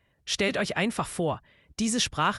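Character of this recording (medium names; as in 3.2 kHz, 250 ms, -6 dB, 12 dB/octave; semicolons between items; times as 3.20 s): noise floor -69 dBFS; spectral tilt -3.5 dB/octave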